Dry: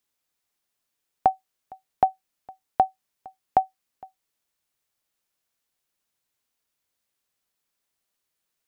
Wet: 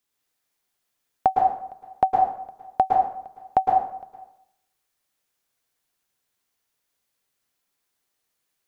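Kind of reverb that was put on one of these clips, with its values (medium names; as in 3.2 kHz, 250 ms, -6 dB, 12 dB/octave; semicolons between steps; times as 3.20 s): plate-style reverb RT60 0.74 s, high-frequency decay 0.7×, pre-delay 100 ms, DRR -1.5 dB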